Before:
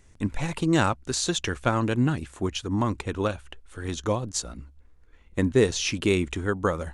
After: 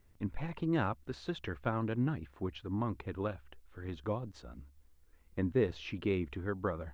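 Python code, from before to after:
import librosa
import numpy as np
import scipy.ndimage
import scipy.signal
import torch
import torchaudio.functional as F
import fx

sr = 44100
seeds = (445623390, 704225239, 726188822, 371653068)

y = fx.air_absorb(x, sr, metres=370.0)
y = fx.quant_dither(y, sr, seeds[0], bits=12, dither='triangular')
y = y * 10.0 ** (-9.0 / 20.0)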